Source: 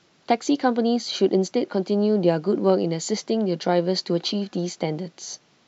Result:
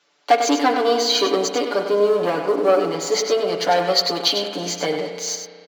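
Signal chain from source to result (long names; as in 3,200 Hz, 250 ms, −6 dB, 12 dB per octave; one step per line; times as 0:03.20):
0:01.81–0:03.14: high-shelf EQ 2,600 Hz −8.5 dB
leveller curve on the samples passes 2
high-pass filter 490 Hz 12 dB per octave
comb filter 6.9 ms, depth 97%
single-tap delay 98 ms −8 dB
spring reverb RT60 2.2 s, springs 34 ms, chirp 25 ms, DRR 7.5 dB
level −1 dB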